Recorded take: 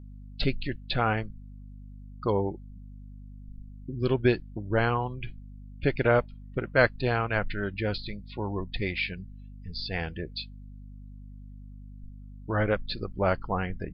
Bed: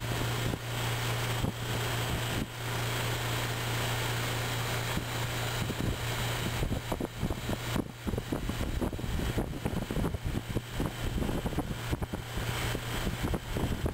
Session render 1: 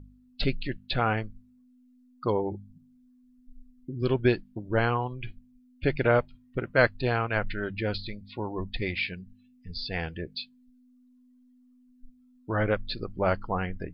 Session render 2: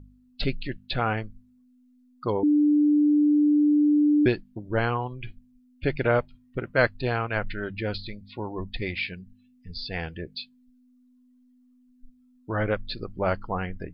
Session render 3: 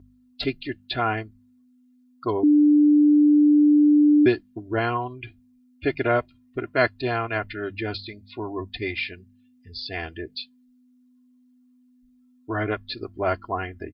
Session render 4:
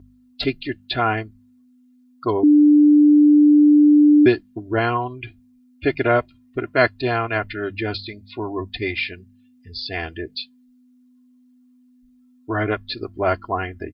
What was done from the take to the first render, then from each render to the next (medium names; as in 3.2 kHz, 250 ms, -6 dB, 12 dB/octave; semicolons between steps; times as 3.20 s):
de-hum 50 Hz, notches 4
2.43–4.26 s: bleep 296 Hz -16.5 dBFS
high-pass 90 Hz; comb 2.9 ms, depth 77%
trim +4 dB